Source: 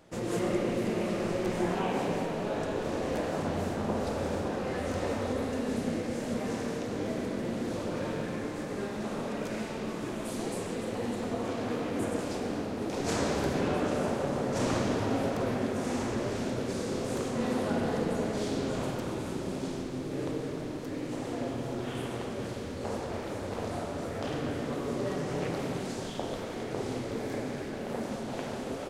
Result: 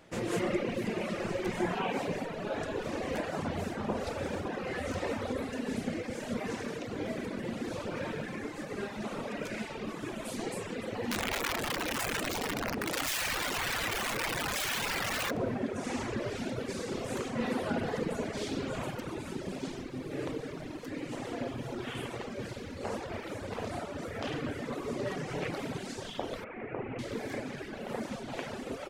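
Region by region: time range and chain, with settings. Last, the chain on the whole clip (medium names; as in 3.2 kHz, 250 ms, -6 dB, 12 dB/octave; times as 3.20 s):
11.11–15.31 s: hum notches 60/120/180/240/300/360/420/480 Hz + integer overflow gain 27.5 dB + level flattener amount 100%
26.44–26.99 s: Chebyshev low-pass 2.6 kHz, order 4 + hum notches 50/100/150/200/250/300/350/400/450 Hz
whole clip: reverb removal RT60 1.9 s; peaking EQ 2.2 kHz +5.5 dB 1.4 oct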